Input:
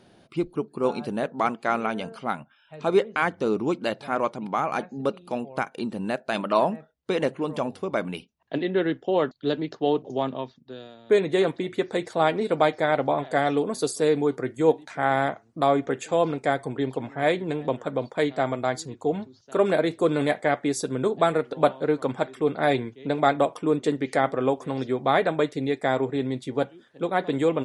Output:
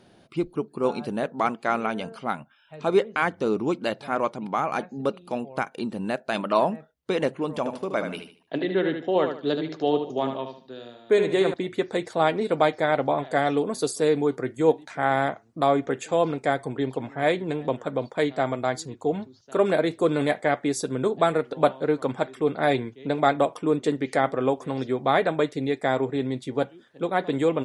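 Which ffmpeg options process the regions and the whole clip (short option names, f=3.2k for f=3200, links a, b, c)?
-filter_complex "[0:a]asettb=1/sr,asplit=3[a][b][c];[a]atrim=end=7.584[d];[b]atrim=start=7.58:end=11.54,asetpts=PTS-STARTPTS,afade=t=in:d=0.004:c=qsin,afade=t=out:st=3.956:d=0.004:c=qsin,lowshelf=f=89:g=-10.5,aecho=1:1:75|150|225|300:0.447|0.134|0.0402|0.0121,atrim=end_sample=174636[e];[c]atrim=start=11.536[f];[d][e]acrossfade=d=0.004:c1=hsin:c2=qsin[g];[g][f]acrossfade=d=0.004:c1=qsin:c2=hsin"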